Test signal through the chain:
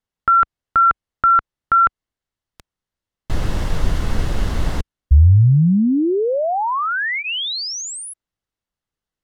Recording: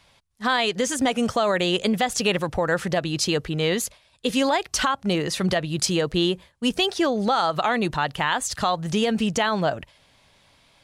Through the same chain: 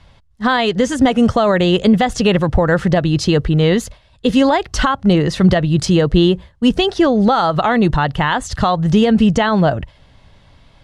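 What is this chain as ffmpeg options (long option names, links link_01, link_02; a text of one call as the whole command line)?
ffmpeg -i in.wav -af "aemphasis=mode=reproduction:type=bsi,bandreject=frequency=2400:width=11,volume=6.5dB" out.wav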